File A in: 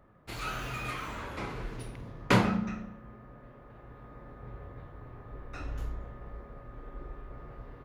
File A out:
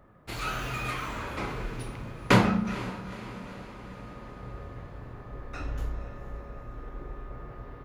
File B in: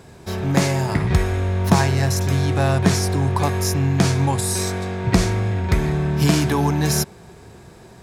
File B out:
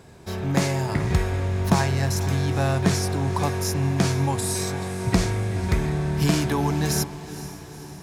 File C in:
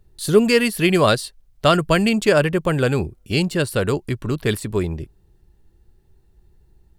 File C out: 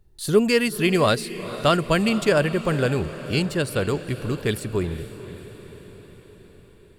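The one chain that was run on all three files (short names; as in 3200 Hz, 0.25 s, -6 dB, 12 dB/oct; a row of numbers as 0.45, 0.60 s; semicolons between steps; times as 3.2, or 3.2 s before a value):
diffused feedback echo 0.47 s, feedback 60%, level -14 dB; normalise peaks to -6 dBFS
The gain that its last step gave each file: +3.5, -4.0, -3.5 dB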